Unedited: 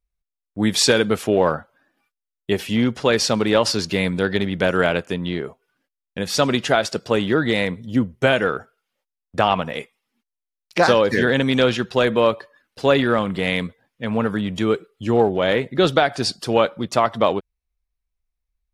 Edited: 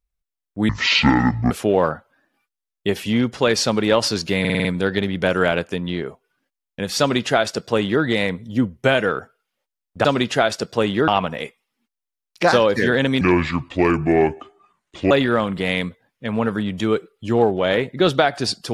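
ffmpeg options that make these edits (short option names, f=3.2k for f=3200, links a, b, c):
-filter_complex "[0:a]asplit=12[a][b][c][d][e][f][g][h][i][j][k][l];[a]atrim=end=0.694[m];[b]atrim=start=0.69:end=1.14,asetpts=PTS-STARTPTS,asetrate=24255,aresample=44100[n];[c]atrim=start=1.136:end=4.082[o];[d]atrim=start=4.028:end=4.082[p];[e]atrim=start=4.028:end=4.082[q];[f]atrim=start=4.028:end=4.082[r];[g]atrim=start=4.028:end=4.082[s];[h]atrim=start=4.028:end=9.432[t];[i]atrim=start=6.378:end=7.412[u];[j]atrim=start=9.428:end=11.564[v];[k]atrim=start=11.56:end=12.89,asetpts=PTS-STARTPTS,asetrate=30870,aresample=44100[w];[l]atrim=start=12.886[x];[m][n]acrossfade=d=0.004:c1=hsin:c2=hsin[y];[y][o]acrossfade=d=0.004:c1=hsin:c2=hsin[z];[z][p]acrossfade=d=0.004:c1=hsin:c2=hsin[aa];[aa][q]acrossfade=d=0.004:c1=hsin:c2=hsin[ab];[ab][r]acrossfade=d=0.004:c1=hsin:c2=hsin[ac];[ac][s]acrossfade=d=0.004:c1=hsin:c2=hsin[ad];[ad][t]acrossfade=d=0.004:c1=hsin:c2=hsin[ae];[ae][u]acrossfade=d=0.004:c1=hsin:c2=hsin[af];[af][v]acrossfade=d=0.004:c1=hsin:c2=hsin[ag];[ag][w]acrossfade=d=0.004:c1=hsin:c2=hsin[ah];[ah][x]acrossfade=d=0.004:c1=hsin:c2=hsin"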